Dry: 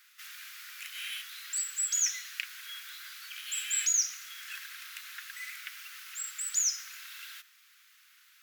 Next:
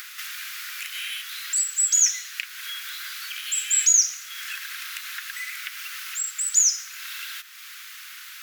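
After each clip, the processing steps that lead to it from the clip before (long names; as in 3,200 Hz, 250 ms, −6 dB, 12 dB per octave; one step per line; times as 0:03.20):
dynamic equaliser 7,000 Hz, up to +6 dB, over −43 dBFS, Q 1.6
upward compression, threshold −31 dBFS
level +4.5 dB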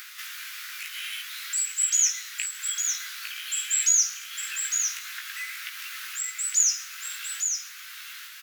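chorus effect 0.66 Hz, delay 16 ms, depth 2.6 ms
single-tap delay 855 ms −6 dB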